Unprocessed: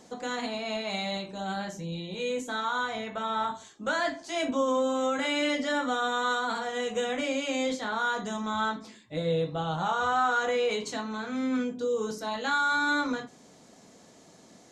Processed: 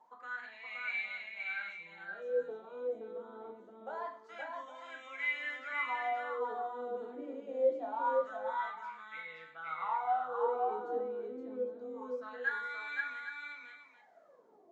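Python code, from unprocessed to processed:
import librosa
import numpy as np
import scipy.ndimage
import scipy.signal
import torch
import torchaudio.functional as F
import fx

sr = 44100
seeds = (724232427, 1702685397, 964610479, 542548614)

y = fx.wah_lfo(x, sr, hz=0.25, low_hz=330.0, high_hz=2300.0, q=16.0)
y = fx.echo_multitap(y, sr, ms=(99, 520, 807), db=(-14.0, -3.0, -12.0))
y = y * 10.0 ** (6.0 / 20.0)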